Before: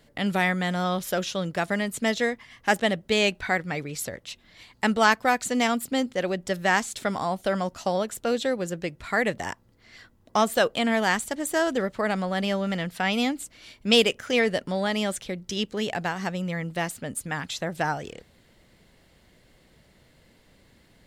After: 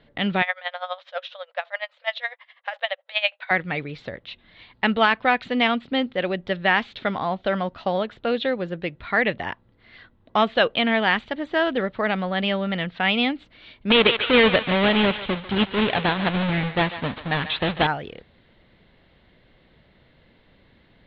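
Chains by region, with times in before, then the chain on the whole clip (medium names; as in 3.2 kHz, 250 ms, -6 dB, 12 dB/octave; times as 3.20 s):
0.42–3.51 s: brick-wall FIR band-pass 500–12000 Hz + logarithmic tremolo 12 Hz, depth 18 dB
13.90–17.87 s: square wave that keeps the level + steep low-pass 4.2 kHz 48 dB/octave + thinning echo 145 ms, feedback 49%, high-pass 940 Hz, level -9.5 dB
whole clip: elliptic low-pass 3.8 kHz, stop band 70 dB; dynamic bell 2.7 kHz, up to +6 dB, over -40 dBFS, Q 1.6; loudness maximiser +7.5 dB; trim -5 dB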